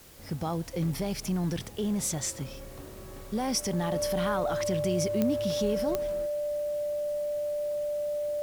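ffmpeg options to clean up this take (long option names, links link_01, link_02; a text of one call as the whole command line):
ffmpeg -i in.wav -af "adeclick=threshold=4,bandreject=frequency=590:width=30,afwtdn=0.002" out.wav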